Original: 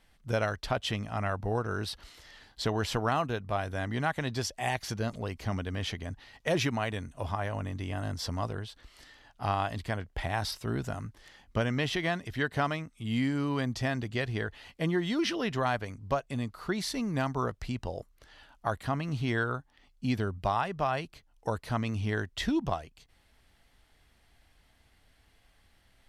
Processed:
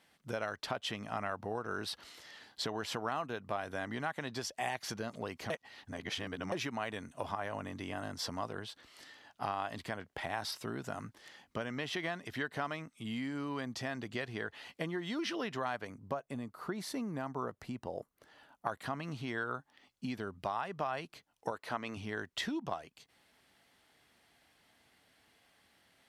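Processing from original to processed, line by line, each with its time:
5.50–6.52 s: reverse
15.87–18.67 s: peaking EQ 4 kHz -8.5 dB 2.7 oct
21.51–21.97 s: tone controls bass -10 dB, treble -5 dB
whole clip: compression, threshold -34 dBFS; dynamic bell 1.2 kHz, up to +3 dB, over -50 dBFS, Q 0.8; high-pass 180 Hz 12 dB/octave

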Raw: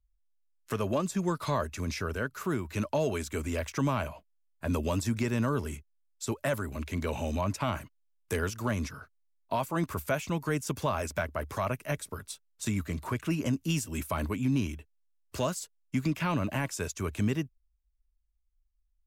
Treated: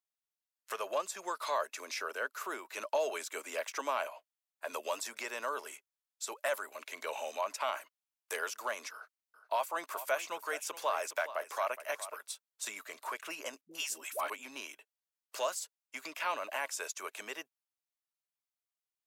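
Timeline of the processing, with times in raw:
1.67–4.11 s: resonant high-pass 240 Hz, resonance Q 1.6
8.92–12.21 s: delay 418 ms -13.5 dB
13.61–14.30 s: phase dispersion highs, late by 99 ms, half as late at 510 Hz
whole clip: high-pass 550 Hz 24 dB/octave; trim -1 dB

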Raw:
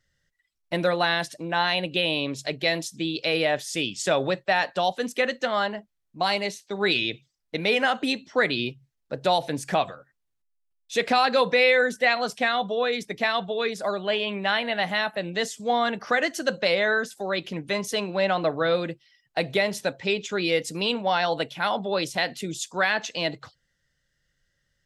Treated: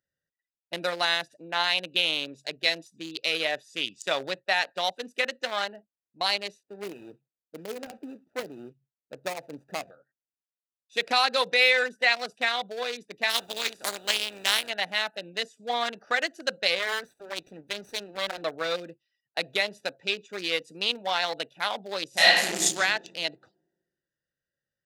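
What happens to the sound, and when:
6.63–9.91 s: median filter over 41 samples
13.29–14.68 s: spectral contrast reduction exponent 0.4
16.79–18.42 s: comb filter that takes the minimum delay 0.49 ms
22.08–22.75 s: reverb throw, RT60 1.4 s, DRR -9.5 dB
whole clip: local Wiener filter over 41 samples; high-pass 930 Hz 6 dB/octave; treble shelf 4.1 kHz +11 dB

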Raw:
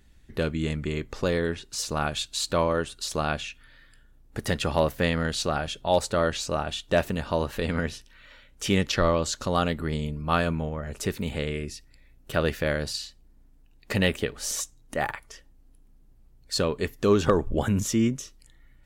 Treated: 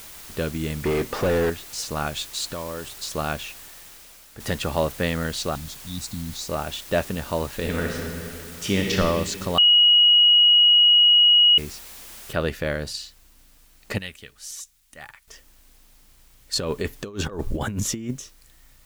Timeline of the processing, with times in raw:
0.84–1.50 s: overdrive pedal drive 31 dB, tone 1 kHz, clips at -13.5 dBFS
2.51–2.95 s: compression 4:1, threshold -29 dBFS
3.45–4.40 s: fade out, to -10 dB
5.55–6.49 s: Chebyshev band-stop 280–3700 Hz, order 5
7.56–8.95 s: reverb throw, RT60 2.6 s, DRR 0 dB
9.58–11.58 s: bleep 2.9 kHz -11.5 dBFS
12.33 s: noise floor step -42 dB -58 dB
13.98–15.28 s: amplifier tone stack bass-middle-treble 5-5-5
16.53–18.11 s: compressor with a negative ratio -26 dBFS, ratio -0.5

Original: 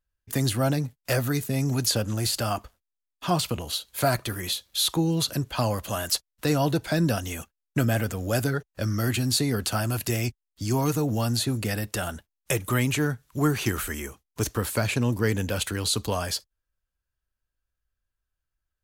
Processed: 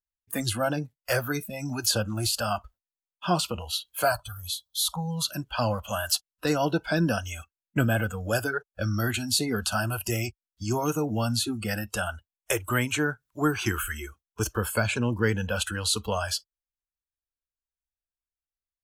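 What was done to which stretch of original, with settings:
4.12–5.25 s: static phaser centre 850 Hz, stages 4
whole clip: spectral noise reduction 18 dB; dynamic bell 1.5 kHz, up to +6 dB, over -49 dBFS, Q 6.9

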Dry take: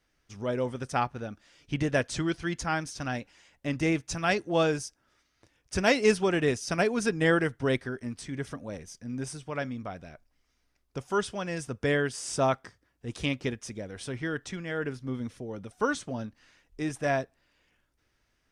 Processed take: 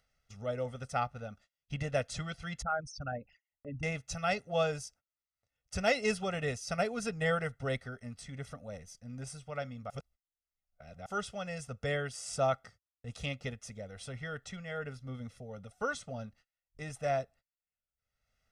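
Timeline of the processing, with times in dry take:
2.62–3.83 s: resonances exaggerated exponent 3
9.90–11.06 s: reverse
whole clip: gate -52 dBFS, range -32 dB; comb 1.5 ms, depth 93%; upward compressor, threshold -44 dBFS; trim -8.5 dB

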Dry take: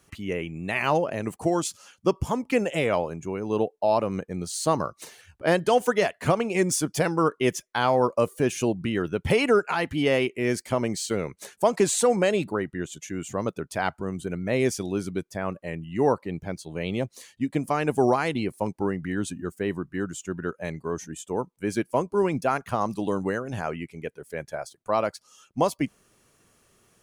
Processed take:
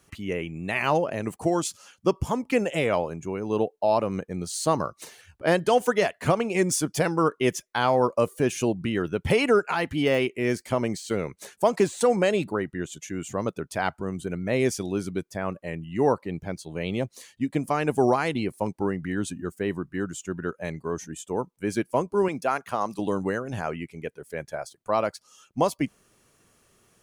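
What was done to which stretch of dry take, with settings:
9.53–12.01 s: de-esser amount 70%
22.28–22.99 s: high-pass 350 Hz 6 dB/octave

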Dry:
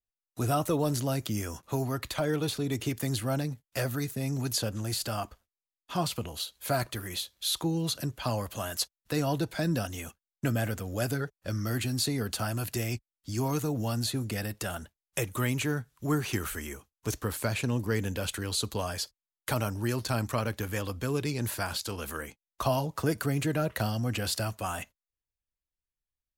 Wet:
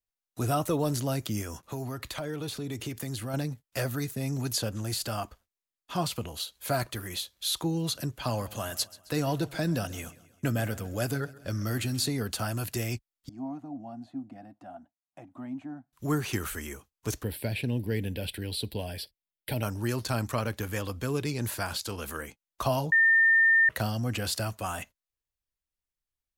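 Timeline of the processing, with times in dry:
1.42–3.34 s: compression 2.5:1, threshold -33 dBFS
8.07–12.10 s: feedback delay 133 ms, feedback 53%, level -19.5 dB
13.29–15.93 s: two resonant band-passes 440 Hz, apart 1.4 oct
17.23–19.63 s: static phaser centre 2.9 kHz, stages 4
22.92–23.69 s: bleep 1.81 kHz -17.5 dBFS

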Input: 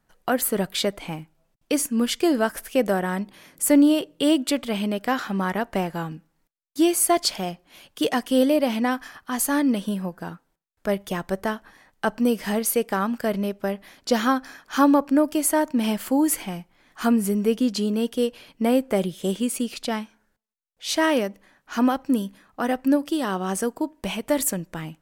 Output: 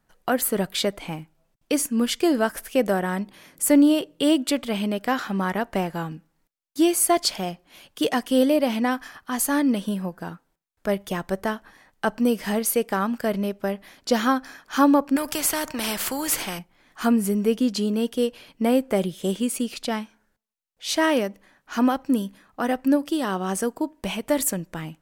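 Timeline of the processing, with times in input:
15.16–16.59 s: spectrum-flattening compressor 2:1

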